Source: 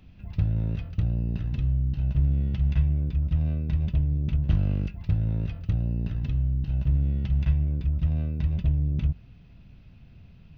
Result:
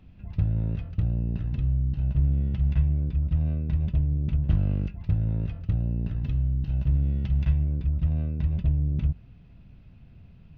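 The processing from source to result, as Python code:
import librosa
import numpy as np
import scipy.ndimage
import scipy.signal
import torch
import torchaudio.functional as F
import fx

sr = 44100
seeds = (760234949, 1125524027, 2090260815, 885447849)

y = fx.high_shelf(x, sr, hz=2800.0, db=fx.steps((0.0, -8.5), (6.25, -2.5), (7.63, -8.0)))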